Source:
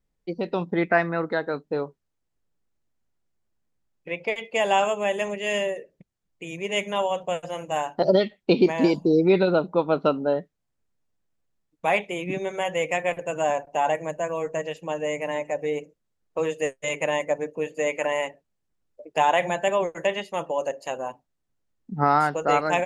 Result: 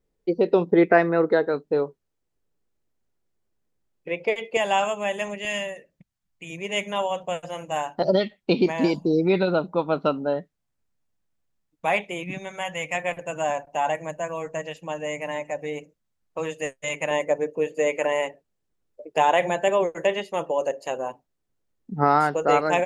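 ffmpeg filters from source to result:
ffmpeg -i in.wav -af "asetnsamples=nb_out_samples=441:pad=0,asendcmd='1.46 equalizer g 5.5;4.57 equalizer g -5.5;5.45 equalizer g -13;6.5 equalizer g -3;12.23 equalizer g -13.5;12.95 equalizer g -5.5;17.11 equalizer g 4.5',equalizer=frequency=420:width_type=o:width=0.85:gain=11.5" out.wav

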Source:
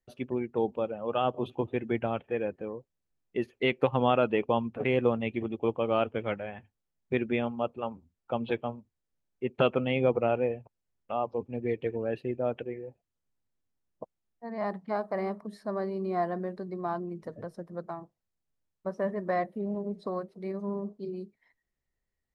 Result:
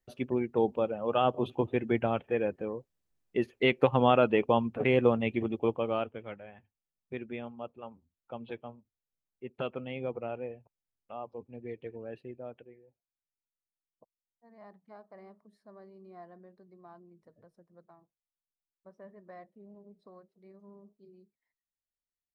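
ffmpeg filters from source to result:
ffmpeg -i in.wav -af "volume=1.5dB,afade=type=out:start_time=5.52:duration=0.67:silence=0.251189,afade=type=out:start_time=12.19:duration=0.65:silence=0.334965" out.wav

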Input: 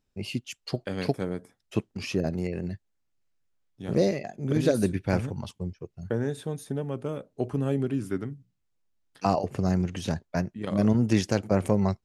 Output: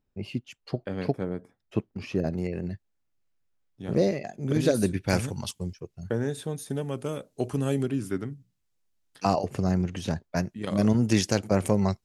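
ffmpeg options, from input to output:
ffmpeg -i in.wav -af "asetnsamples=nb_out_samples=441:pad=0,asendcmd='2.15 equalizer g -3;4.22 equalizer g 3.5;5.08 equalizer g 15;5.8 equalizer g 5;6.7 equalizer g 13;7.86 equalizer g 4.5;9.64 equalizer g -1.5;10.36 equalizer g 7',equalizer=frequency=10000:width_type=o:width=2.7:gain=-13" out.wav

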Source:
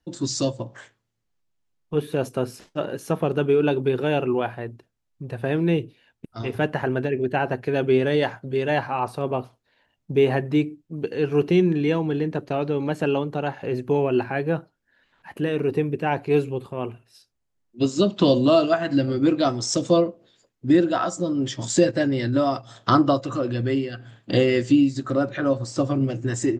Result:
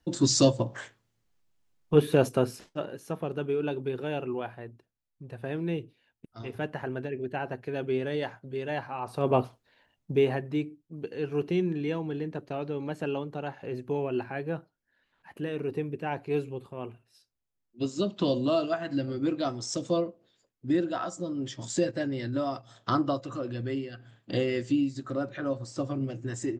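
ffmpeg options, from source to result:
ffmpeg -i in.wav -af "volume=16dB,afade=type=out:start_time=2.09:duration=0.82:silence=0.223872,afade=type=in:start_time=9.05:duration=0.34:silence=0.223872,afade=type=out:start_time=9.39:duration=1.01:silence=0.251189" out.wav

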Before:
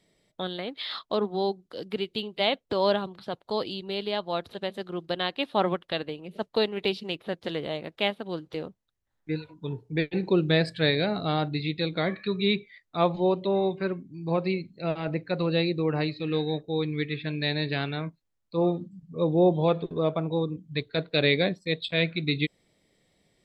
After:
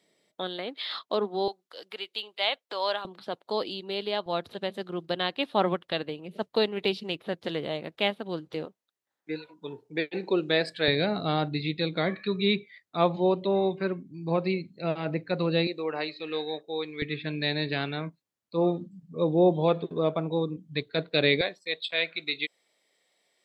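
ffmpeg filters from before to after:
ffmpeg -i in.wav -af "asetnsamples=nb_out_samples=441:pad=0,asendcmd='1.48 highpass f 790;3.05 highpass f 230;4.26 highpass f 95;8.65 highpass f 330;10.88 highpass f 120;15.67 highpass f 470;17.02 highpass f 150;21.41 highpass f 630',highpass=250" out.wav

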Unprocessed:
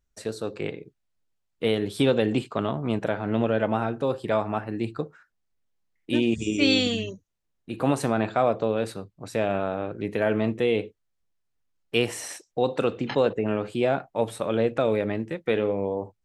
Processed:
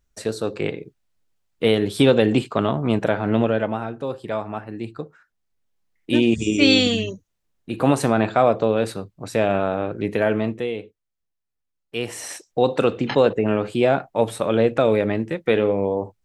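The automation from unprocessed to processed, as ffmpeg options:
ffmpeg -i in.wav -af "volume=24.5dB,afade=type=out:start_time=3.31:duration=0.48:silence=0.398107,afade=type=in:start_time=4.97:duration=1.24:silence=0.421697,afade=type=out:start_time=10.1:duration=0.66:silence=0.281838,afade=type=in:start_time=11.95:duration=0.49:silence=0.281838" out.wav

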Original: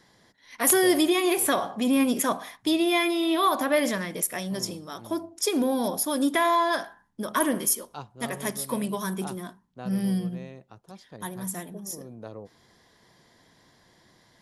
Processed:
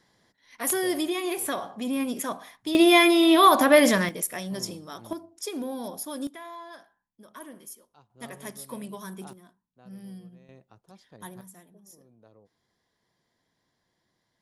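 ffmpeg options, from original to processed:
ffmpeg -i in.wav -af "asetnsamples=nb_out_samples=441:pad=0,asendcmd='2.75 volume volume 6.5dB;4.09 volume volume -2dB;5.13 volume volume -8.5dB;6.27 volume volume -19.5dB;8.1 volume volume -9dB;9.33 volume volume -16.5dB;10.49 volume volume -6.5dB;11.41 volume volume -16.5dB',volume=-6dB" out.wav

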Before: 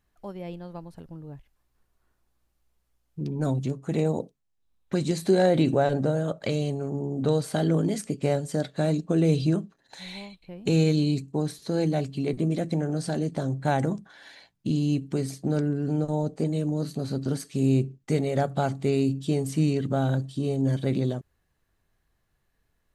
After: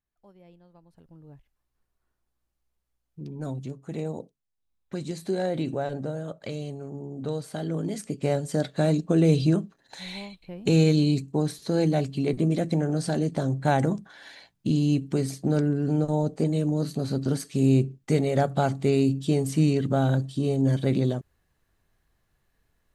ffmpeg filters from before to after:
ffmpeg -i in.wav -af "volume=2dB,afade=type=in:start_time=0.82:duration=0.48:silence=0.334965,afade=type=in:start_time=7.69:duration=0.98:silence=0.354813" out.wav

